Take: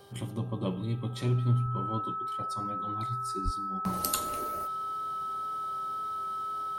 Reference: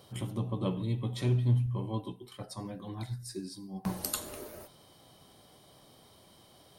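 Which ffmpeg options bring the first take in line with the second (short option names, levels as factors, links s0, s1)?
-filter_complex "[0:a]bandreject=f=398.1:t=h:w=4,bandreject=f=796.2:t=h:w=4,bandreject=f=1194.3:t=h:w=4,bandreject=f=1592.4:t=h:w=4,bandreject=f=1300:w=30,asplit=3[s0][s1][s2];[s0]afade=t=out:st=3.44:d=0.02[s3];[s1]highpass=f=140:w=0.5412,highpass=f=140:w=1.3066,afade=t=in:st=3.44:d=0.02,afade=t=out:st=3.56:d=0.02[s4];[s2]afade=t=in:st=3.56:d=0.02[s5];[s3][s4][s5]amix=inputs=3:normalize=0,asetnsamples=n=441:p=0,asendcmd='3.93 volume volume -3.5dB',volume=1"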